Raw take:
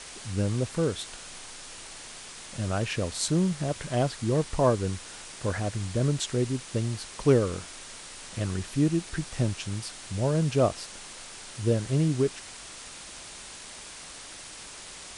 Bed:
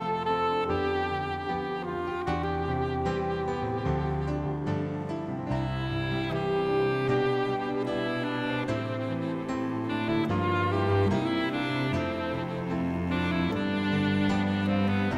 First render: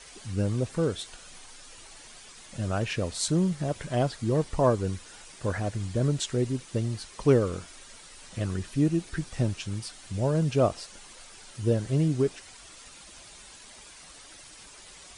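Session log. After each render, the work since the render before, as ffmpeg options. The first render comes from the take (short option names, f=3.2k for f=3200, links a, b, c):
-af "afftdn=nr=9:nf=-44"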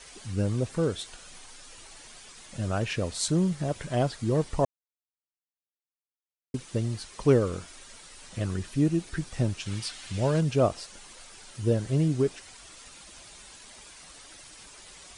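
-filter_complex "[0:a]asettb=1/sr,asplit=3[a][b][c];[a]atrim=end=9.664[d];[b]atrim=start=9.66:end=10.41,asetpts=PTS-STARTPTS,afade=t=in:d=0.004:c=qsin,afade=t=out:st=0.746:d=0.004:c=qsin,equalizer=f=2.8k:t=o:w=2.3:g=8[e];[c]atrim=start=10.406[f];[d][e]acrossfade=d=0.004:c1=hsin:c2=qsin[g];[g][f]acrossfade=d=0.004:c1=qsin:c2=hsin,asplit=3[h][i][j];[h]atrim=end=4.65,asetpts=PTS-STARTPTS,afade=t=out:st=4.646:d=0.004:c=hsin[k];[i]atrim=start=4.65:end=6.54,asetpts=PTS-STARTPTS,volume=0[l];[j]atrim=start=6.54,asetpts=PTS-STARTPTS,afade=t=in:d=0.004:c=hsin[m];[k][l][m]concat=n=3:v=0:a=1"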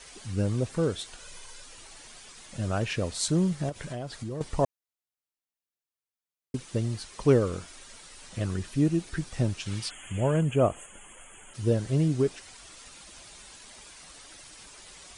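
-filter_complex "[0:a]asettb=1/sr,asplit=3[a][b][c];[a]atrim=end=1.204[d];[b]atrim=start=1.2:end=1.64,asetpts=PTS-STARTPTS,afade=t=in:d=0.004:c=qsin,afade=t=out:st=0.436:d=0.004:c=qsin,aecho=1:1:2:0.58,atrim=end_sample=19404[e];[c]atrim=start=1.636[f];[d][e]acrossfade=d=0.004:c1=hsin:c2=qsin[g];[g][f]acrossfade=d=0.004:c1=qsin:c2=hsin,asettb=1/sr,asplit=3[h][i][j];[h]atrim=end=3.694[k];[i]atrim=start=3.69:end=4.41,asetpts=PTS-STARTPTS,afade=t=in:d=0.004:c=qsin,afade=t=out:st=0.716:d=0.004:c=qsin,acompressor=threshold=-32dB:ratio=5:attack=3.2:release=140:knee=1:detection=peak[l];[j]atrim=start=4.406[m];[k][l]acrossfade=d=0.004:c1=hsin:c2=qsin[n];[n][m]acrossfade=d=0.004:c1=qsin:c2=hsin,asplit=3[o][p][q];[o]afade=t=out:st=9.89:d=0.02[r];[p]asuperstop=centerf=4700:order=20:qfactor=1.5,afade=t=in:st=9.89:d=0.02,afade=t=out:st=11.53:d=0.02[s];[q]afade=t=in:st=11.53:d=0.02[t];[r][s][t]amix=inputs=3:normalize=0"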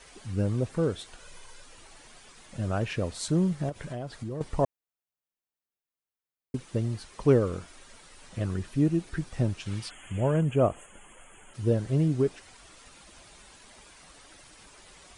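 -af "equalizer=f=6.6k:t=o:w=2.5:g=-6.5"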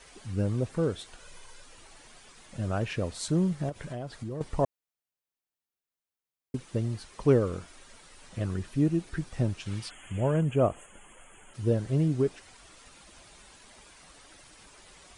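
-af "volume=-1dB"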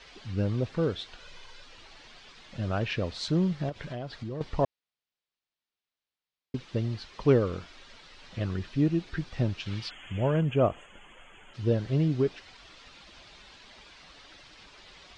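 -af "lowpass=f=4.4k:w=0.5412,lowpass=f=4.4k:w=1.3066,highshelf=f=3.2k:g=11.5"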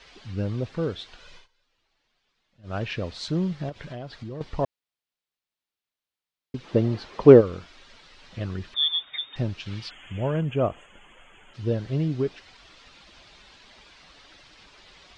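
-filter_complex "[0:a]asplit=3[a][b][c];[a]afade=t=out:st=6.63:d=0.02[d];[b]equalizer=f=470:w=0.34:g=12,afade=t=in:st=6.63:d=0.02,afade=t=out:st=7.4:d=0.02[e];[c]afade=t=in:st=7.4:d=0.02[f];[d][e][f]amix=inputs=3:normalize=0,asettb=1/sr,asplit=3[g][h][i];[g]atrim=end=8.744[j];[h]atrim=start=8.74:end=9.36,asetpts=PTS-STARTPTS,afade=t=in:d=0.004:c=qsin,afade=t=out:st=0.616:d=0.004:c=qsin,lowpass=f=3.1k:t=q:w=0.5098,lowpass=f=3.1k:t=q:w=0.6013,lowpass=f=3.1k:t=q:w=0.9,lowpass=f=3.1k:t=q:w=2.563,afreqshift=-3700[k];[i]atrim=start=9.356[l];[j][k]acrossfade=d=0.004:c1=hsin:c2=qsin[m];[m][l]acrossfade=d=0.004:c1=qsin:c2=hsin,asplit=3[n][o][p];[n]atrim=end=1.48,asetpts=PTS-STARTPTS,afade=t=out:st=1.35:d=0.13:silence=0.0749894[q];[o]atrim=start=1.48:end=2.63,asetpts=PTS-STARTPTS,volume=-22.5dB[r];[p]atrim=start=2.63,asetpts=PTS-STARTPTS,afade=t=in:d=0.13:silence=0.0749894[s];[q][r][s]concat=n=3:v=0:a=1"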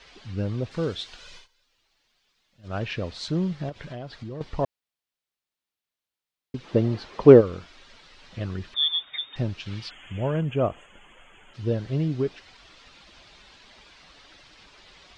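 -filter_complex "[0:a]asettb=1/sr,asplit=3[a][b][c];[a]atrim=end=0.714[d];[b]atrim=start=0.71:end=2.68,asetpts=PTS-STARTPTS,afade=t=in:d=0.004:c=qsin,afade=t=out:st=1.966:d=0.004:c=qsin,highshelf=f=3.6k:g=9.5[e];[c]atrim=start=2.676[f];[d][e]acrossfade=d=0.004:c1=hsin:c2=qsin[g];[g][f]acrossfade=d=0.004:c1=qsin:c2=hsin"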